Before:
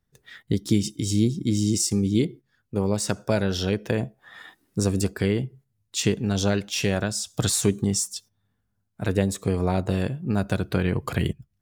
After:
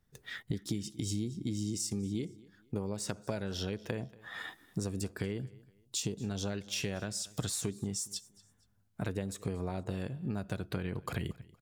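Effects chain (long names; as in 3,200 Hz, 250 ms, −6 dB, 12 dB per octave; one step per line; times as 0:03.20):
0:05.38–0:06.20: parametric band 1,800 Hz −12 dB 1.2 octaves
downward compressor 5 to 1, threshold −36 dBFS, peak gain reduction 19 dB
repeating echo 234 ms, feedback 32%, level −22 dB
level +2 dB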